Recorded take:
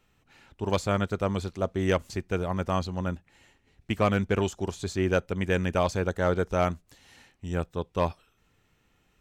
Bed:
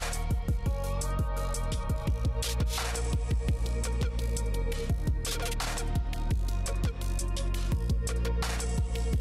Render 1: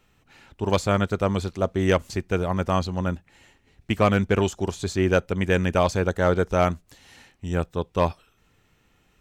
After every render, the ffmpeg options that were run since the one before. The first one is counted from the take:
-af "volume=4.5dB"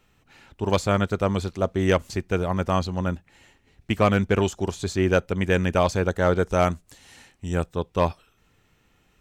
-filter_complex "[0:a]asettb=1/sr,asplit=3[a][b][c];[a]atrim=end=6.424[d];[b]atrim=start=6.42:end=7.73,asetpts=PTS-STARTPTS,afade=t=in:d=0.004:c=qsin,afade=t=out:st=1.306:d=0.004:c=qsin,equalizer=f=8.6k:t=o:w=0.82:g=6[e];[c]atrim=start=7.726[f];[d][e]acrossfade=d=0.004:c1=hsin:c2=qsin[g];[g][f]acrossfade=d=0.004:c1=qsin:c2=hsin"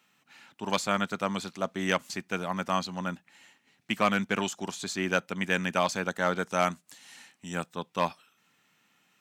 -af "highpass=f=190:w=0.5412,highpass=f=190:w=1.3066,equalizer=f=410:t=o:w=1.4:g=-12"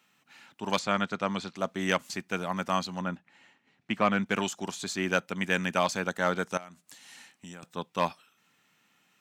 -filter_complex "[0:a]asettb=1/sr,asplit=3[a][b][c];[a]atrim=end=0.794[d];[b]atrim=start=0.79:end=1.56,asetpts=PTS-STARTPTS,afade=t=in:d=0.004:c=qsin,afade=t=out:st=0.766:d=0.004:c=qsin,lowpass=5.7k[e];[c]atrim=start=1.556[f];[d][e]acrossfade=d=0.004:c1=hsin:c2=qsin[g];[g][f]acrossfade=d=0.004:c1=qsin:c2=hsin,asettb=1/sr,asplit=3[h][i][j];[h]atrim=end=3.014[k];[i]atrim=start=3.01:end=4.26,asetpts=PTS-STARTPTS,afade=t=in:d=0.004:c=qsin,afade=t=out:st=1.246:d=0.004:c=qsin,aemphasis=mode=reproduction:type=75fm[l];[j]atrim=start=4.256[m];[k][l]acrossfade=d=0.004:c1=hsin:c2=qsin[n];[n][m]acrossfade=d=0.004:c1=qsin:c2=hsin,asettb=1/sr,asplit=3[o][p][q];[o]atrim=end=6.574[r];[p]atrim=start=6.57:end=7.63,asetpts=PTS-STARTPTS,afade=t=in:d=0.004:c=qsin,afade=t=out:st=1.056:d=0.004:c=qsin,acompressor=threshold=-41dB:ratio=8:attack=3.2:release=140:knee=1:detection=peak[s];[q]atrim=start=7.626[t];[r][s]acrossfade=d=0.004:c1=hsin:c2=qsin[u];[u][t]acrossfade=d=0.004:c1=qsin:c2=hsin"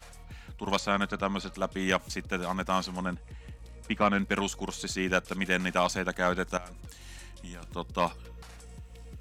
-filter_complex "[1:a]volume=-17dB[a];[0:a][a]amix=inputs=2:normalize=0"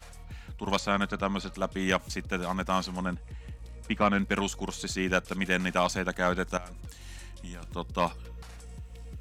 -af "equalizer=f=67:w=0.52:g=3.5"

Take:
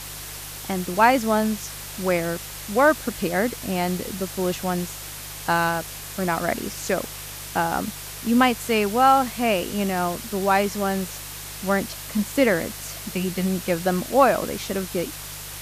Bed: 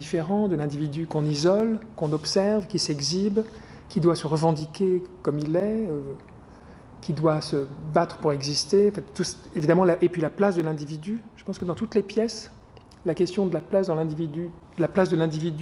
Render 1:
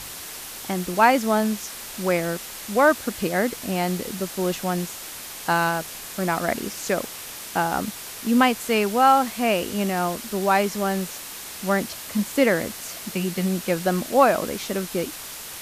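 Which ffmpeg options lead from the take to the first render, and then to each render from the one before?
-af "bandreject=f=50:t=h:w=4,bandreject=f=100:t=h:w=4,bandreject=f=150:t=h:w=4"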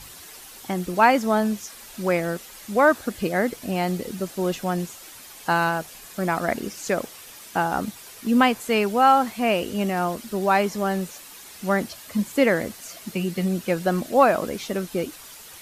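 -af "afftdn=nr=9:nf=-37"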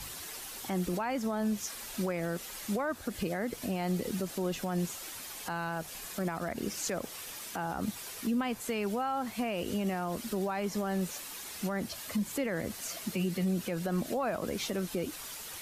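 -filter_complex "[0:a]acrossover=split=140[a][b];[b]acompressor=threshold=-28dB:ratio=3[c];[a][c]amix=inputs=2:normalize=0,alimiter=limit=-23.5dB:level=0:latency=1:release=63"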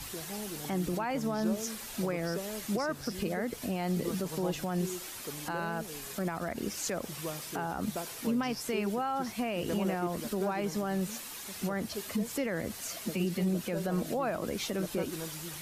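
-filter_complex "[1:a]volume=-17.5dB[a];[0:a][a]amix=inputs=2:normalize=0"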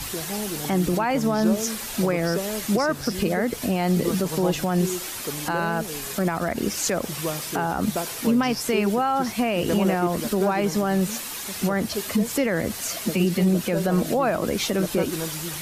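-af "volume=10dB"

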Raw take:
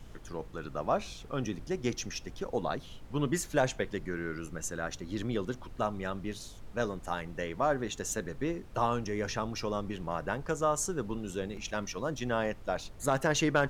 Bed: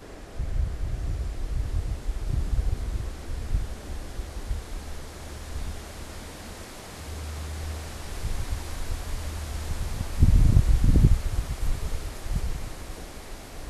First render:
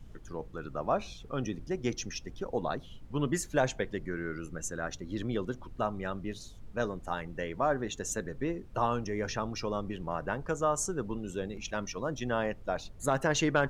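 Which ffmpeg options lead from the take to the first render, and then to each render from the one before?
-af "afftdn=nr=8:nf=-48"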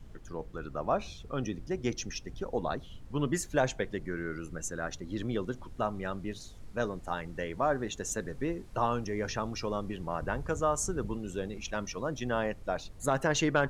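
-filter_complex "[1:a]volume=-23.5dB[a];[0:a][a]amix=inputs=2:normalize=0"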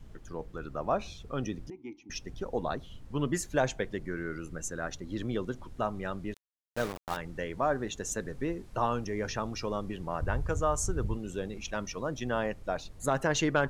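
-filter_complex "[0:a]asettb=1/sr,asplit=3[a][b][c];[a]atrim=end=1.704[d];[b]atrim=start=1.7:end=2.1,asetpts=PTS-STARTPTS,afade=t=in:d=0.004:c=qsin,afade=t=out:st=0.396:d=0.004:c=qsin,asplit=3[e][f][g];[e]bandpass=f=300:t=q:w=8,volume=0dB[h];[f]bandpass=f=870:t=q:w=8,volume=-6dB[i];[g]bandpass=f=2.24k:t=q:w=8,volume=-9dB[j];[h][i][j]amix=inputs=3:normalize=0[k];[c]atrim=start=2.096[l];[d][k]acrossfade=d=0.004:c1=hsin:c2=qsin[m];[m][l]acrossfade=d=0.004:c1=qsin:c2=hsin,asettb=1/sr,asplit=3[n][o][p];[n]atrim=end=6.344[q];[o]atrim=start=6.34:end=7.17,asetpts=PTS-STARTPTS,afade=t=in:d=0.004:c=qsin,afade=t=out:st=0.826:d=0.004:c=qsin,aeval=exprs='val(0)*gte(abs(val(0)),0.02)':c=same[r];[p]atrim=start=7.166[s];[q][r]acrossfade=d=0.004:c1=hsin:c2=qsin[t];[t][s]acrossfade=d=0.004:c1=qsin:c2=hsin,asettb=1/sr,asplit=3[u][v][w];[u]atrim=end=10.184[x];[v]atrim=start=10.18:end=11.17,asetpts=PTS-STARTPTS,afade=t=in:d=0.004:c=qsin,afade=t=out:st=0.986:d=0.004:c=qsin,lowshelf=f=130:t=q:w=1.5:g=7[y];[w]atrim=start=11.166[z];[x][y]acrossfade=d=0.004:c1=hsin:c2=qsin[aa];[aa][z]acrossfade=d=0.004:c1=qsin:c2=hsin"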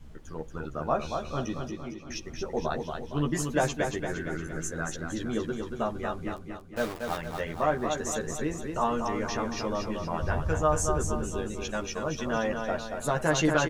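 -filter_complex "[0:a]asplit=2[a][b];[b]adelay=13,volume=-3dB[c];[a][c]amix=inputs=2:normalize=0,aecho=1:1:231|462|693|924|1155|1386:0.531|0.265|0.133|0.0664|0.0332|0.0166"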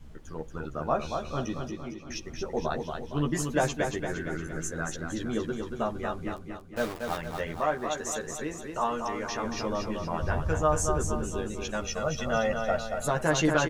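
-filter_complex "[0:a]asettb=1/sr,asplit=3[a][b][c];[a]atrim=end=7.604[d];[b]atrim=start=7.6:end=9.44,asetpts=PTS-STARTPTS,afade=t=in:d=0.004:c=qsin,afade=t=out:st=1.836:d=0.004:c=qsin,lowshelf=f=300:g=-8.5[e];[c]atrim=start=9.436[f];[d][e]acrossfade=d=0.004:c1=hsin:c2=qsin[g];[g][f]acrossfade=d=0.004:c1=qsin:c2=hsin,asettb=1/sr,asplit=3[h][i][j];[h]atrim=end=11.824[k];[i]atrim=start=11.82:end=13.08,asetpts=PTS-STARTPTS,afade=t=in:d=0.004:c=qsin,afade=t=out:st=1.256:d=0.004:c=qsin,aecho=1:1:1.5:0.63,atrim=end_sample=55566[l];[j]atrim=start=13.076[m];[k][l]acrossfade=d=0.004:c1=hsin:c2=qsin[n];[n][m]acrossfade=d=0.004:c1=qsin:c2=hsin"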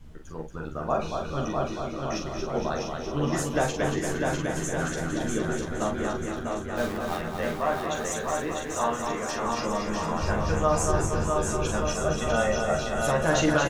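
-filter_complex "[0:a]asplit=2[a][b];[b]adelay=43,volume=-6dB[c];[a][c]amix=inputs=2:normalize=0,aecho=1:1:650|1170|1586|1919|2185:0.631|0.398|0.251|0.158|0.1"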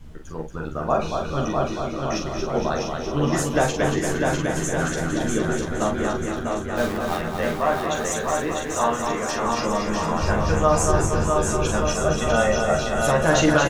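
-af "volume=5dB"

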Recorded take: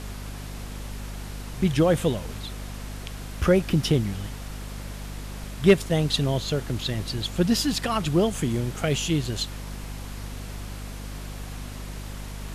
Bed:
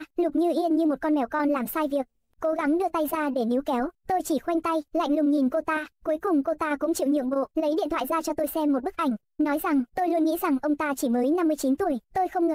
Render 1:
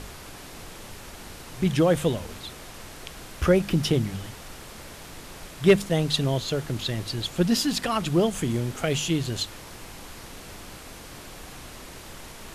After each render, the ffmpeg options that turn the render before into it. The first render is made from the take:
-af "bandreject=f=50:t=h:w=6,bandreject=f=100:t=h:w=6,bandreject=f=150:t=h:w=6,bandreject=f=200:t=h:w=6,bandreject=f=250:t=h:w=6"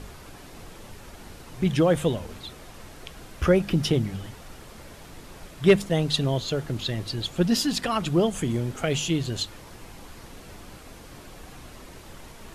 -af "afftdn=nr=6:nf=-43"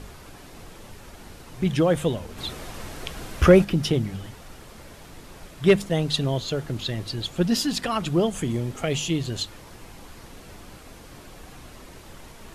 -filter_complex "[0:a]asplit=3[a][b][c];[a]afade=t=out:st=2.37:d=0.02[d];[b]acontrast=86,afade=t=in:st=2.37:d=0.02,afade=t=out:st=3.63:d=0.02[e];[c]afade=t=in:st=3.63:d=0.02[f];[d][e][f]amix=inputs=3:normalize=0,asettb=1/sr,asplit=3[g][h][i];[g]atrim=end=8.504[j];[h]atrim=start=8.5:end=9.24,asetpts=PTS-STARTPTS,afade=t=in:d=0.004:c=qsin,afade=t=out:st=0.736:d=0.004:c=qsin,bandreject=f=1.5k:w=11[k];[i]atrim=start=9.236[l];[j][k]acrossfade=d=0.004:c1=hsin:c2=qsin[m];[m][l]acrossfade=d=0.004:c1=qsin:c2=hsin"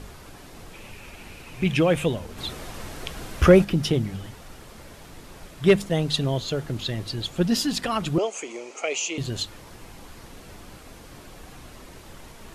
-filter_complex "[0:a]asettb=1/sr,asplit=3[a][b][c];[a]atrim=end=0.734[d];[b]atrim=start=0.73:end=2.06,asetpts=PTS-STARTPTS,afade=t=in:d=0.004:c=qsin,afade=t=out:st=1.326:d=0.004:c=qsin,equalizer=f=2.5k:w=3.5:g=13[e];[c]atrim=start=2.056[f];[d][e]acrossfade=d=0.004:c1=hsin:c2=qsin[g];[g][f]acrossfade=d=0.004:c1=qsin:c2=hsin,asettb=1/sr,asplit=3[h][i][j];[h]atrim=end=8.184[k];[i]atrim=start=8.18:end=9.18,asetpts=PTS-STARTPTS,afade=t=in:d=0.004:c=qsin,afade=t=out:st=0.996:d=0.004:c=qsin,highpass=f=400:w=0.5412,highpass=f=400:w=1.3066,equalizer=f=1.7k:t=q:w=4:g=-8,equalizer=f=2.4k:t=q:w=4:g=9,equalizer=f=3.5k:t=q:w=4:g=-8,equalizer=f=6.5k:t=q:w=4:g=7,lowpass=f=7.9k:w=0.5412,lowpass=f=7.9k:w=1.3066[l];[j]atrim=start=9.176[m];[k][l]acrossfade=d=0.004:c1=hsin:c2=qsin[n];[n][m]acrossfade=d=0.004:c1=qsin:c2=hsin"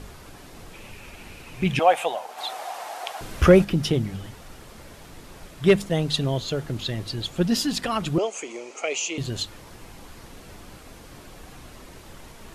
-filter_complex "[0:a]asettb=1/sr,asplit=3[a][b][c];[a]atrim=end=1.794[d];[b]atrim=start=1.79:end=3.21,asetpts=PTS-STARTPTS,afade=t=in:d=0.004:c=qsin,afade=t=out:st=1.416:d=0.004:c=qsin,highpass=f=750:t=q:w=6[e];[c]atrim=start=3.206[f];[d][e]acrossfade=d=0.004:c1=hsin:c2=qsin[g];[g][f]acrossfade=d=0.004:c1=qsin:c2=hsin"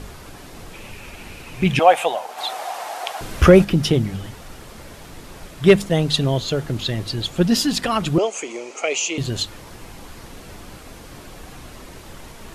-af "volume=5dB,alimiter=limit=-1dB:level=0:latency=1"

